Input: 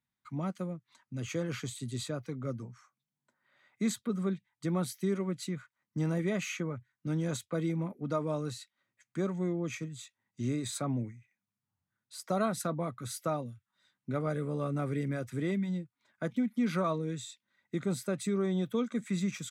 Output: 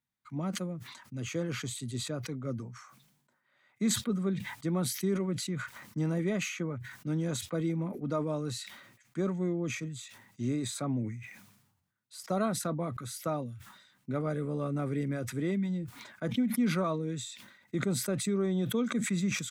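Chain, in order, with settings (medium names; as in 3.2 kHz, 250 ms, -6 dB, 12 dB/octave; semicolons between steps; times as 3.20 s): dynamic bell 270 Hz, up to +3 dB, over -38 dBFS, Q 0.83; decay stretcher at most 59 dB/s; trim -1.5 dB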